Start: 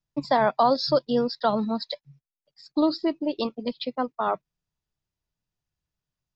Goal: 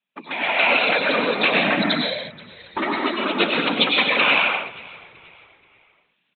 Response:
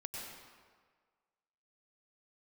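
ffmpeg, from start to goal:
-filter_complex "[0:a]acompressor=threshold=-27dB:ratio=10,aresample=8000,aeval=exprs='0.133*sin(PI/2*3.55*val(0)/0.133)':channel_layout=same,aresample=44100[link_01];[1:a]atrim=start_sample=2205,afade=type=out:start_time=0.41:duration=0.01,atrim=end_sample=18522[link_02];[link_01][link_02]afir=irnorm=-1:irlink=0,afftfilt=real='hypot(re,im)*cos(2*PI*random(0))':imag='hypot(re,im)*sin(2*PI*random(1))':win_size=512:overlap=0.75,highpass=frequency=190:width=0.5412,highpass=frequency=190:width=1.3066,equalizer=frequency=2400:width_type=o:width=0.26:gain=8,asplit=2[link_03][link_04];[link_04]asplit=3[link_05][link_06][link_07];[link_05]adelay=479,afreqshift=-54,volume=-22dB[link_08];[link_06]adelay=958,afreqshift=-108,volume=-30.4dB[link_09];[link_07]adelay=1437,afreqshift=-162,volume=-38.8dB[link_10];[link_08][link_09][link_10]amix=inputs=3:normalize=0[link_11];[link_03][link_11]amix=inputs=2:normalize=0,dynaudnorm=framelen=350:gausssize=3:maxgain=12dB,tiltshelf=frequency=1500:gain=-7.5,volume=2dB"

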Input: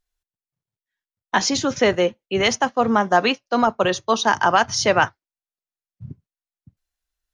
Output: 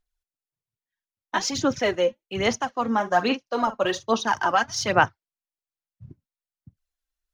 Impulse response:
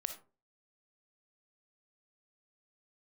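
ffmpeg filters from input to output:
-filter_complex "[0:a]asettb=1/sr,asplit=3[link_01][link_02][link_03];[link_01]atrim=end=2.904[link_04];[link_02]atrim=start=2.9:end=4.09,asetpts=PTS-STARTPTS,afade=type=in:duration=0.004:curve=qsin,afade=type=out:start_time=1.186:duration=0.004:curve=qsin,asplit=2[link_05][link_06];[link_06]adelay=45,volume=-12.5dB[link_07];[link_05][link_07]amix=inputs=2:normalize=0,atrim=end_sample=52479[link_08];[link_03]atrim=start=4.086[link_09];[link_04][link_08]acrossfade=duration=0.004:curve1=hsin:curve2=qsin[link_10];[link_10][link_09]acrossfade=duration=0.004:curve1=qsin:curve2=hsin,aphaser=in_gain=1:out_gain=1:delay=3.8:decay=0.56:speed=1.2:type=sinusoidal,volume=-7dB"

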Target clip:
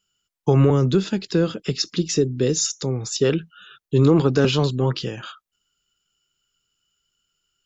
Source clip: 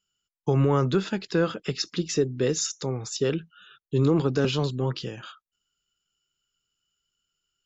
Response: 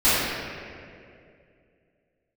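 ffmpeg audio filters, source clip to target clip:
-filter_complex "[0:a]asettb=1/sr,asplit=3[link_01][link_02][link_03];[link_01]atrim=end=0.704[link_04];[link_02]atrim=start=0.7:end=3.09,asetpts=PTS-STARTPTS,afade=type=in:duration=0.004:curve=qsin,afade=type=out:start_time=2.386:duration=0.004:curve=qsin,acrossover=split=480|3000[link_05][link_06][link_07];[link_06]acompressor=threshold=-56dB:ratio=1.5[link_08];[link_05][link_08][link_07]amix=inputs=3:normalize=0[link_09];[link_03]atrim=start=3.086[link_10];[link_04][link_09]acrossfade=duration=0.004:curve1=hsin:curve2=qsin[link_11];[link_11][link_10]acrossfade=duration=0.004:curve1=qsin:curve2=hsin,volume=6dB"

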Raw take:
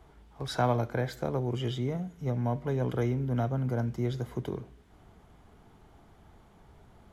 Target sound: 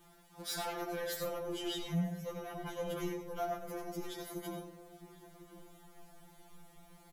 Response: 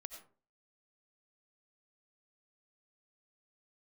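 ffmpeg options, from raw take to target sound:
-filter_complex "[0:a]aemphasis=mode=production:type=75fm[link_01];[1:a]atrim=start_sample=2205[link_02];[link_01][link_02]afir=irnorm=-1:irlink=0,asoftclip=type=tanh:threshold=-35dB,asettb=1/sr,asplit=3[link_03][link_04][link_05];[link_03]atrim=end=0.854[link_06];[link_04]atrim=start=0.85:end=3.12,asetpts=PTS-STARTPTS,afade=type=in:duration=0.004:curve=qsin,afade=type=out:start_time=2.266:duration=0.004:curve=qsin,equalizer=frequency=2900:width_type=o:width=0.22:gain=6[link_07];[link_05]atrim=start=3.116[link_08];[link_06][link_07]acrossfade=duration=0.004:curve1=hsin:curve2=qsin[link_09];[link_09][link_08]acrossfade=duration=0.004:curve1=qsin:curve2=hsin,asplit=2[link_10][link_11];[link_11]adelay=1050,volume=-13dB,highshelf=frequency=4000:gain=-23.6[link_12];[link_10][link_12]amix=inputs=2:normalize=0,afftfilt=real='re*2.83*eq(mod(b,8),0)':imag='im*2.83*eq(mod(b,8),0)':win_size=2048:overlap=0.75,volume=5dB"

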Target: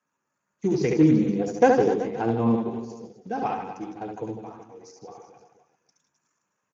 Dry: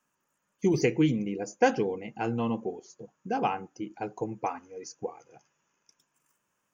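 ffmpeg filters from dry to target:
ffmpeg -i in.wav -filter_complex "[0:a]asplit=3[link_01][link_02][link_03];[link_01]afade=type=out:start_time=0.88:duration=0.02[link_04];[link_02]equalizer=frequency=360:width=0.31:gain=6,afade=type=in:start_time=0.88:duration=0.02,afade=type=out:start_time=2.54:duration=0.02[link_05];[link_03]afade=type=in:start_time=2.54:duration=0.02[link_06];[link_04][link_05][link_06]amix=inputs=3:normalize=0,bandreject=frequency=3100:width=5.4,asplit=3[link_07][link_08][link_09];[link_07]afade=type=out:start_time=4.39:duration=0.02[link_10];[link_08]acompressor=threshold=-48dB:ratio=2,afade=type=in:start_time=4.39:duration=0.02,afade=type=out:start_time=5.06:duration=0.02[link_11];[link_09]afade=type=in:start_time=5.06:duration=0.02[link_12];[link_10][link_11][link_12]amix=inputs=3:normalize=0,aecho=1:1:70|154|254.8|375.8|520.9:0.631|0.398|0.251|0.158|0.1,volume=-1dB" -ar 16000 -c:a libspeex -b:a 13k out.spx

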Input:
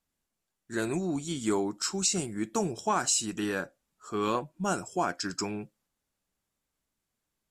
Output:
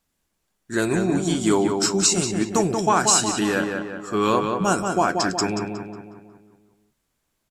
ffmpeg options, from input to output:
ffmpeg -i in.wav -filter_complex "[0:a]asplit=2[link_01][link_02];[link_02]adelay=182,lowpass=frequency=3100:poles=1,volume=-4.5dB,asplit=2[link_03][link_04];[link_04]adelay=182,lowpass=frequency=3100:poles=1,volume=0.53,asplit=2[link_05][link_06];[link_06]adelay=182,lowpass=frequency=3100:poles=1,volume=0.53,asplit=2[link_07][link_08];[link_08]adelay=182,lowpass=frequency=3100:poles=1,volume=0.53,asplit=2[link_09][link_10];[link_10]adelay=182,lowpass=frequency=3100:poles=1,volume=0.53,asplit=2[link_11][link_12];[link_12]adelay=182,lowpass=frequency=3100:poles=1,volume=0.53,asplit=2[link_13][link_14];[link_14]adelay=182,lowpass=frequency=3100:poles=1,volume=0.53[link_15];[link_01][link_03][link_05][link_07][link_09][link_11][link_13][link_15]amix=inputs=8:normalize=0,volume=8.5dB" out.wav

